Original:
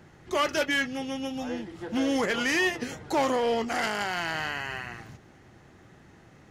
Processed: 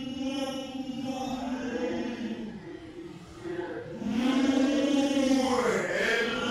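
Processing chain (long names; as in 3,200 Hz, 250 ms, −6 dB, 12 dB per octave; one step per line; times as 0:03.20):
extreme stretch with random phases 5.4×, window 0.05 s, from 0:01.18
hum removal 92.55 Hz, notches 27
highs frequency-modulated by the lows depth 0.13 ms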